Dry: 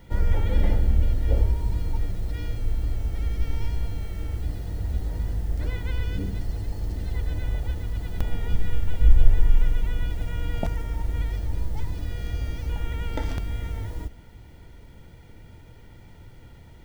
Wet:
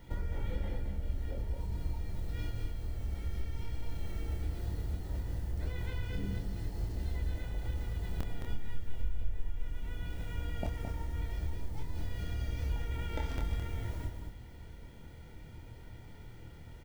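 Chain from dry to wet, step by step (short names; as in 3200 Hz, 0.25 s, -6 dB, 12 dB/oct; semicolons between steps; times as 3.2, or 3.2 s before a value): compressor 4:1, threshold -27 dBFS, peak gain reduction 17.5 dB; doubler 26 ms -4 dB; echo 0.216 s -6.5 dB; gain -5 dB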